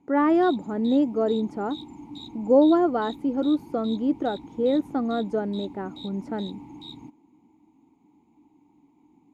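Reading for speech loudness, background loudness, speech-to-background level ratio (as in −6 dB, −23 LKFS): −24.5 LKFS, −41.5 LKFS, 17.0 dB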